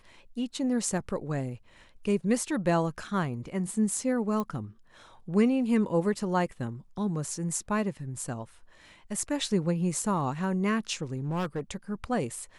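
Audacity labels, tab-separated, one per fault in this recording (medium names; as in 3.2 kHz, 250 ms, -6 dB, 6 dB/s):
4.400000	4.400000	pop -19 dBFS
11.180000	11.600000	clipped -27 dBFS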